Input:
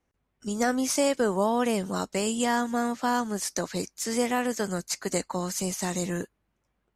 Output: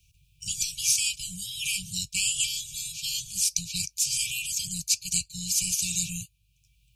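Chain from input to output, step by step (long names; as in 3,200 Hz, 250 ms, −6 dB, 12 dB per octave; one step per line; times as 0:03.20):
linear-phase brick-wall band-stop 160–2,300 Hz
multiband upward and downward compressor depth 40%
level +8 dB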